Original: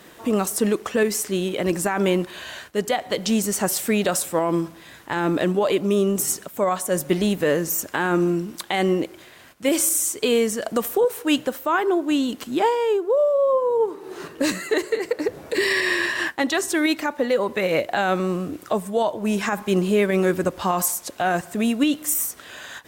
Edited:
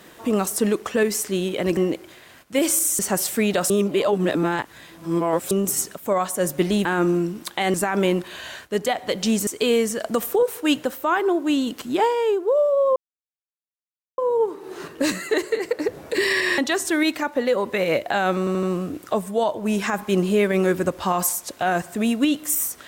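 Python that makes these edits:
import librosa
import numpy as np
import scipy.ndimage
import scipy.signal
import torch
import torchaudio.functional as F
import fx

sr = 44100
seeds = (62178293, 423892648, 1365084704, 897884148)

y = fx.edit(x, sr, fx.swap(start_s=1.77, length_s=1.73, other_s=8.87, other_length_s=1.22),
    fx.reverse_span(start_s=4.21, length_s=1.81),
    fx.cut(start_s=7.36, length_s=0.62),
    fx.insert_silence(at_s=13.58, length_s=1.22),
    fx.cut(start_s=15.98, length_s=0.43),
    fx.stutter(start_s=18.22, slice_s=0.08, count=4), tone=tone)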